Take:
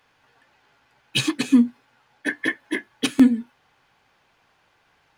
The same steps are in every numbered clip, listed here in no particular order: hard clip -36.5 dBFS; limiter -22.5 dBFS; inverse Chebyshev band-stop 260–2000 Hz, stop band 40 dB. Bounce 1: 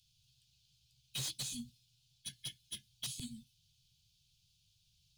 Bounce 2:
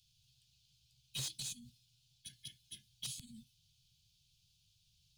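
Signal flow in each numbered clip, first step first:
inverse Chebyshev band-stop > limiter > hard clip; limiter > inverse Chebyshev band-stop > hard clip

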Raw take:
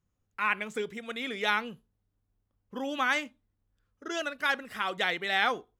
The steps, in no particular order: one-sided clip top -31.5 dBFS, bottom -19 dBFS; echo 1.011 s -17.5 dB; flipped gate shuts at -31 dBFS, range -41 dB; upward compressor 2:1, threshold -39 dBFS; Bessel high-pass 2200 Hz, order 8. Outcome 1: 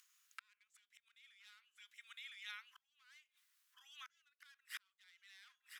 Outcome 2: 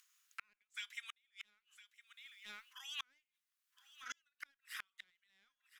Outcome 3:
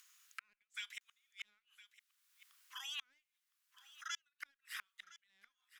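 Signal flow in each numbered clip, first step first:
echo > one-sided clip > flipped gate > upward compressor > Bessel high-pass; upward compressor > Bessel high-pass > one-sided clip > echo > flipped gate; Bessel high-pass > one-sided clip > upward compressor > flipped gate > echo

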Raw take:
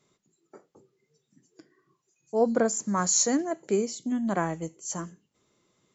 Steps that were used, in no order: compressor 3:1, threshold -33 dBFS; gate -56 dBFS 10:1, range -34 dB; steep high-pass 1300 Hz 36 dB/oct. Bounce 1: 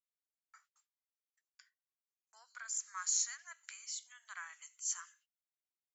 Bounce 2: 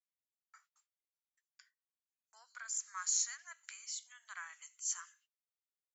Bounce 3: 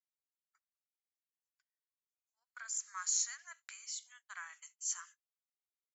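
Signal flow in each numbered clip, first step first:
compressor > gate > steep high-pass; gate > compressor > steep high-pass; compressor > steep high-pass > gate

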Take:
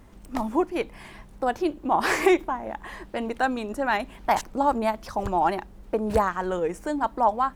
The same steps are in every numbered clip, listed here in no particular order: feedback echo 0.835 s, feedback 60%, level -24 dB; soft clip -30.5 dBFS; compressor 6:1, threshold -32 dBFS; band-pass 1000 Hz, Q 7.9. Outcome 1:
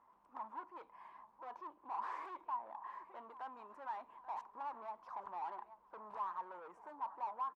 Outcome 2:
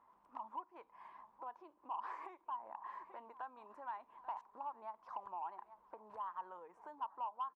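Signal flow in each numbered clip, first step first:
feedback echo > soft clip > band-pass > compressor; feedback echo > compressor > band-pass > soft clip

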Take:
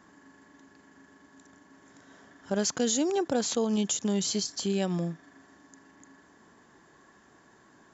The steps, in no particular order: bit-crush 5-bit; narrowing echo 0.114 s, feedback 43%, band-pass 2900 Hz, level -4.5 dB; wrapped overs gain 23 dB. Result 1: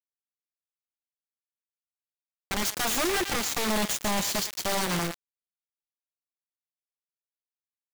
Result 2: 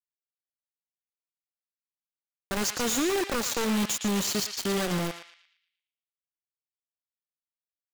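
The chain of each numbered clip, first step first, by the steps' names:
wrapped overs > narrowing echo > bit-crush; bit-crush > wrapped overs > narrowing echo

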